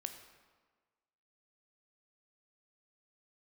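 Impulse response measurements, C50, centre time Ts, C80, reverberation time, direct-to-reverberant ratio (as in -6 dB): 8.5 dB, 21 ms, 10.0 dB, 1.5 s, 6.5 dB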